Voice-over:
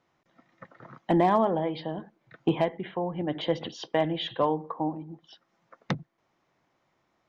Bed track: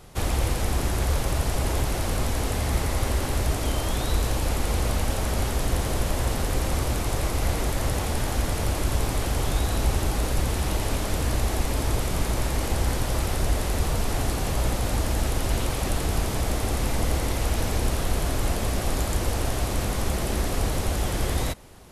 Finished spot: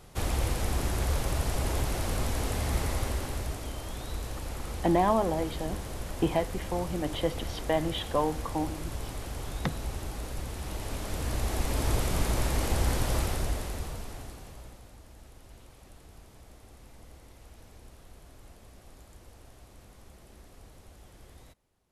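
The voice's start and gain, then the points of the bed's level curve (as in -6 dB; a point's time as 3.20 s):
3.75 s, -2.0 dB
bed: 2.89 s -4.5 dB
3.71 s -12 dB
10.54 s -12 dB
11.91 s -2.5 dB
13.17 s -2.5 dB
14.96 s -27 dB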